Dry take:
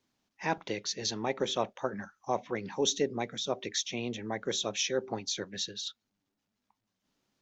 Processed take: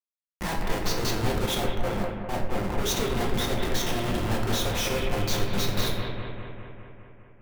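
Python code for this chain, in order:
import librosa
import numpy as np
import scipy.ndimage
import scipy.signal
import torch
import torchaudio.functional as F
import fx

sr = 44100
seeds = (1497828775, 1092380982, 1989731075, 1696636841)

p1 = fx.level_steps(x, sr, step_db=17)
p2 = x + (p1 * librosa.db_to_amplitude(2.0))
p3 = fx.schmitt(p2, sr, flips_db=-34.5)
p4 = fx.echo_bbd(p3, sr, ms=202, stages=4096, feedback_pct=67, wet_db=-4.5)
p5 = fx.room_shoebox(p4, sr, seeds[0], volume_m3=170.0, walls='mixed', distance_m=0.9)
y = fx.band_widen(p5, sr, depth_pct=100, at=(1.46, 3.09))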